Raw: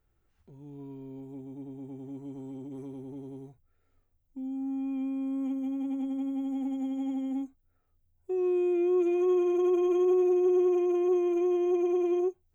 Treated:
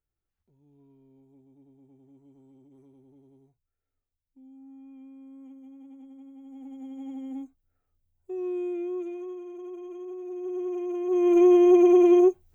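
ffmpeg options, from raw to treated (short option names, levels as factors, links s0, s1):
-af "volume=10.6,afade=t=in:st=6.4:d=0.95:silence=0.266073,afade=t=out:st=8.64:d=0.72:silence=0.298538,afade=t=in:st=10.21:d=0.87:silence=0.266073,afade=t=in:st=11.08:d=0.33:silence=0.223872"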